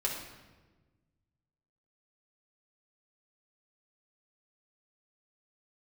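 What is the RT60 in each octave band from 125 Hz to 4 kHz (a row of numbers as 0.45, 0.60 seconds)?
2.2, 1.8, 1.4, 1.1, 1.1, 0.90 seconds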